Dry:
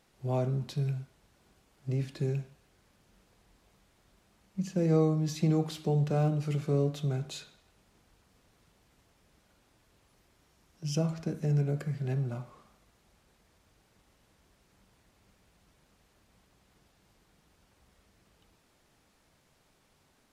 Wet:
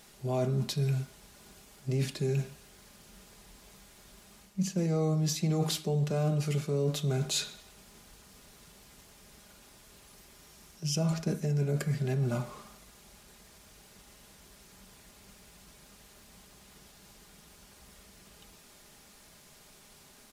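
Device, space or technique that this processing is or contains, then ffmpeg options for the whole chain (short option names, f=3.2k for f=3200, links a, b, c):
compression on the reversed sound: -af "highshelf=f=3.9k:g=10,aecho=1:1:4.9:0.37,areverse,acompressor=threshold=-35dB:ratio=5,areverse,volume=8dB"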